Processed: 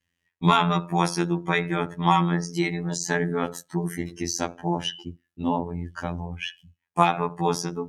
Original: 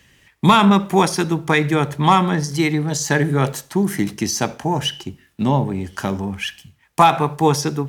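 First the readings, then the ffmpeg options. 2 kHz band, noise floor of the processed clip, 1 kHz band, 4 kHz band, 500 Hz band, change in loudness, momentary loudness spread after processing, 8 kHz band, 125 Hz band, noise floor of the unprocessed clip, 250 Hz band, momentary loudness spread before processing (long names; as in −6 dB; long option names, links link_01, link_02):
−6.5 dB, −80 dBFS, −6.5 dB, −7.0 dB, −7.0 dB, −7.5 dB, 11 LU, −7.5 dB, −7.5 dB, −57 dBFS, −8.0 dB, 11 LU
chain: -af "bandreject=frequency=323.9:width_type=h:width=4,bandreject=frequency=647.8:width_type=h:width=4,bandreject=frequency=971.7:width_type=h:width=4,bandreject=frequency=1295.6:width_type=h:width=4,bandreject=frequency=1619.5:width_type=h:width=4,bandreject=frequency=1943.4:width_type=h:width=4,bandreject=frequency=2267.3:width_type=h:width=4,bandreject=frequency=2591.2:width_type=h:width=4,bandreject=frequency=2915.1:width_type=h:width=4,bandreject=frequency=3239:width_type=h:width=4,bandreject=frequency=3562.9:width_type=h:width=4,bandreject=frequency=3886.8:width_type=h:width=4,bandreject=frequency=4210.7:width_type=h:width=4,bandreject=frequency=4534.6:width_type=h:width=4,bandreject=frequency=4858.5:width_type=h:width=4,bandreject=frequency=5182.4:width_type=h:width=4,bandreject=frequency=5506.3:width_type=h:width=4,bandreject=frequency=5830.2:width_type=h:width=4,bandreject=frequency=6154.1:width_type=h:width=4,bandreject=frequency=6478:width_type=h:width=4,bandreject=frequency=6801.9:width_type=h:width=4,bandreject=frequency=7125.8:width_type=h:width=4,bandreject=frequency=7449.7:width_type=h:width=4,bandreject=frequency=7773.6:width_type=h:width=4,bandreject=frequency=8097.5:width_type=h:width=4,bandreject=frequency=8421.4:width_type=h:width=4,bandreject=frequency=8745.3:width_type=h:width=4,bandreject=frequency=9069.2:width_type=h:width=4,bandreject=frequency=9393.1:width_type=h:width=4,bandreject=frequency=9717:width_type=h:width=4,afftdn=noise_reduction=19:noise_floor=-35,afftfilt=real='hypot(re,im)*cos(PI*b)':imag='0':win_size=2048:overlap=0.75,volume=-3dB"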